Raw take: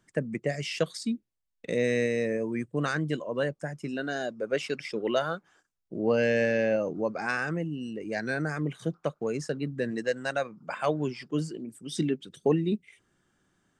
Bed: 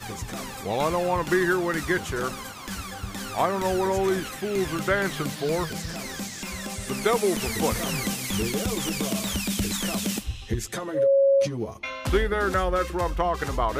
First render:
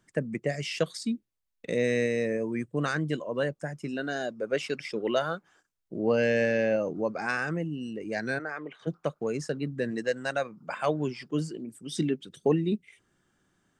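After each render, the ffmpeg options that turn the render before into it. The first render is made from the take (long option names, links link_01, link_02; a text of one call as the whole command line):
ffmpeg -i in.wav -filter_complex "[0:a]asplit=3[link_01][link_02][link_03];[link_01]afade=type=out:start_time=8.38:duration=0.02[link_04];[link_02]highpass=490,lowpass=2900,afade=type=in:start_time=8.38:duration=0.02,afade=type=out:start_time=8.86:duration=0.02[link_05];[link_03]afade=type=in:start_time=8.86:duration=0.02[link_06];[link_04][link_05][link_06]amix=inputs=3:normalize=0" out.wav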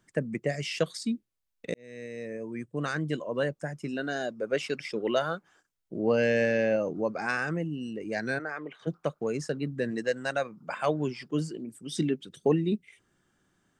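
ffmpeg -i in.wav -filter_complex "[0:a]asplit=2[link_01][link_02];[link_01]atrim=end=1.74,asetpts=PTS-STARTPTS,afade=type=out:start_time=1.736:duration=0.004:curve=hsin[link_03];[link_02]atrim=start=1.74,asetpts=PTS-STARTPTS,afade=type=in:duration=1.52[link_04];[link_03][link_04]concat=n=2:v=0:a=1" out.wav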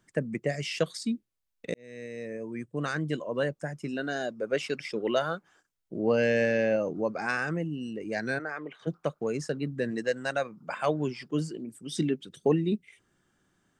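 ffmpeg -i in.wav -af anull out.wav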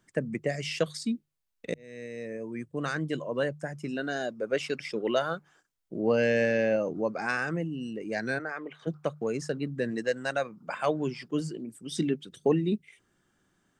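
ffmpeg -i in.wav -af "bandreject=frequency=50:width_type=h:width=6,bandreject=frequency=100:width_type=h:width=6,bandreject=frequency=150:width_type=h:width=6" out.wav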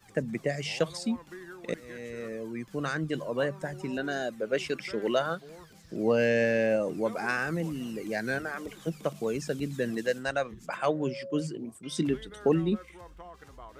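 ffmpeg -i in.wav -i bed.wav -filter_complex "[1:a]volume=-22.5dB[link_01];[0:a][link_01]amix=inputs=2:normalize=0" out.wav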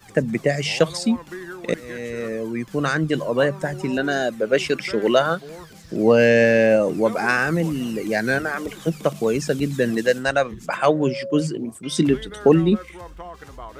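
ffmpeg -i in.wav -af "volume=10dB" out.wav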